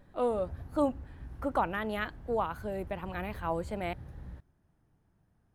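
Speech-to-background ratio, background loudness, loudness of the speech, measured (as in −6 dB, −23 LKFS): 14.0 dB, −48.0 LKFS, −34.0 LKFS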